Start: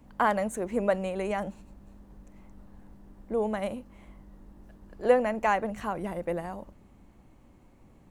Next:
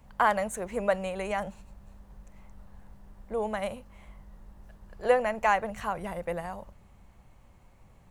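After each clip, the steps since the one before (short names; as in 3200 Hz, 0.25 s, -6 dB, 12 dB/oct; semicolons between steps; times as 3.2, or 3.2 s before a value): bell 290 Hz -14 dB 0.98 oct; gain +2.5 dB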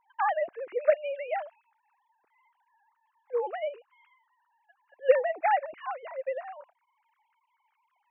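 sine-wave speech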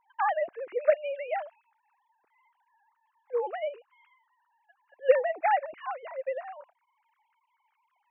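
nothing audible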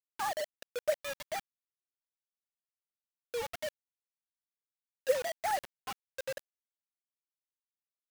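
bit-crush 5-bit; gain -8 dB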